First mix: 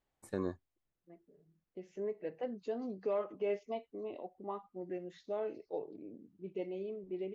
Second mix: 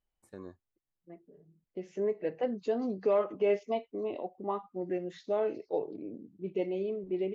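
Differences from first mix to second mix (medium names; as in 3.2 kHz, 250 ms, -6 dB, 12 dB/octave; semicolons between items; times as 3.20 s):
first voice -9.5 dB; second voice +7.5 dB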